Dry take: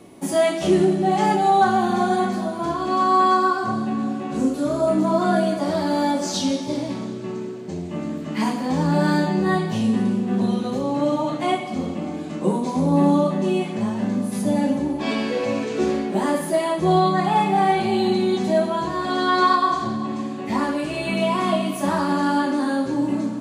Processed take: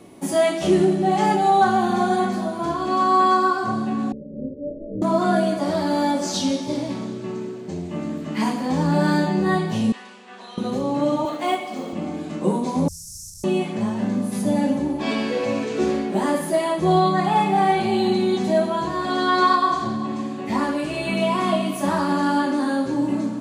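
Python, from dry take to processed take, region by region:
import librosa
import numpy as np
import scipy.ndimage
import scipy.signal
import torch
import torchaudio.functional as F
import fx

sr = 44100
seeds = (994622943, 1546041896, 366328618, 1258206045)

y = fx.chain(x, sr, fx.lower_of_two(delay_ms=3.7),
    fx.cheby_ripple(hz=610.0, ripple_db=9),
    fx.dynamic_eq(hz=260.0, q=4.1, threshold_db=-39.0, ratio=4.0, max_db=-3), at=(4.12, 5.02))
y = fx.chain(y, sr, fx.highpass(hz=1200.0, slope=12),
    fx.air_absorb(metres=68.0), at=(9.92, 10.58))
y = fx.chain(y, sr, fx.highpass(hz=320.0, slope=12),
    fx.quant_float(bits=4), at=(11.25, 11.93))
y = fx.chain(y, sr, fx.delta_mod(bps=64000, step_db=-20.5),
    fx.cheby1_bandstop(low_hz=110.0, high_hz=5500.0, order=5),
    fx.high_shelf(hz=9700.0, db=-4.0), at=(12.88, 13.44))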